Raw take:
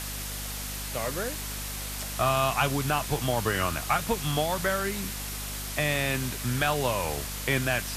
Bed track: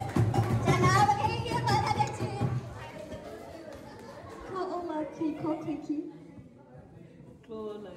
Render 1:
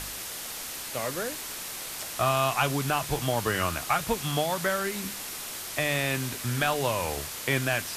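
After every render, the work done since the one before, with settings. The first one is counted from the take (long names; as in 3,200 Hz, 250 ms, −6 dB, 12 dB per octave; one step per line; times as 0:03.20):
hum removal 50 Hz, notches 5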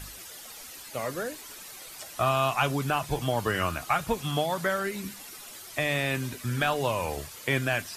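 broadband denoise 11 dB, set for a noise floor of −38 dBFS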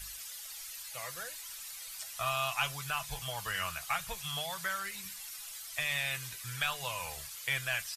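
guitar amp tone stack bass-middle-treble 10-0-10
comb filter 6 ms, depth 34%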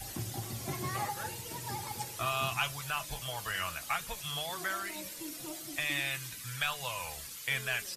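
mix in bed track −13.5 dB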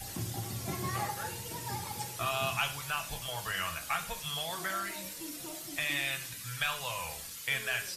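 reverb whose tail is shaped and stops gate 170 ms falling, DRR 7.5 dB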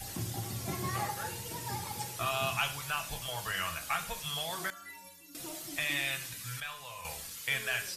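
0:04.70–0:05.35: stiff-string resonator 84 Hz, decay 0.65 s, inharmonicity 0.03
0:06.60–0:07.05: tuned comb filter 94 Hz, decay 0.55 s, harmonics odd, mix 70%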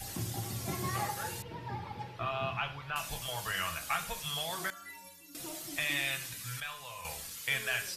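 0:01.42–0:02.96: high-frequency loss of the air 350 metres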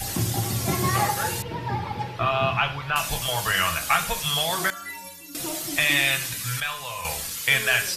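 level +12 dB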